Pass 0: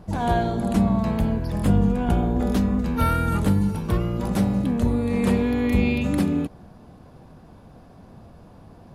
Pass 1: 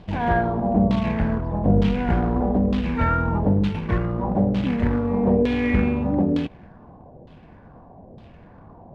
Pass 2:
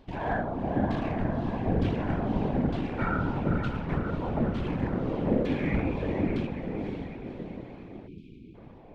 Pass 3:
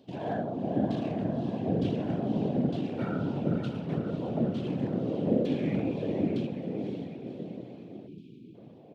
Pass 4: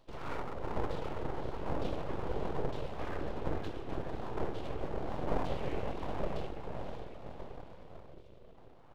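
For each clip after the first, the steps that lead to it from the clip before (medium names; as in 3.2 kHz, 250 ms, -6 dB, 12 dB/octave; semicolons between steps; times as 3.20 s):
band-stop 1.3 kHz, Q 5.5; short-mantissa float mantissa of 2-bit; LFO low-pass saw down 1.1 Hz 500–3500 Hz
echo that smears into a reverb 542 ms, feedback 54%, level -5.5 dB; spectral selection erased 8.08–8.55 s, 350–2200 Hz; whisper effect; trim -8.5 dB
high-pass 120 Hz 24 dB/octave; high-order bell 1.4 kHz -11 dB; feedback delay 66 ms, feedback 57%, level -23.5 dB
full-wave rectifier; trim -4 dB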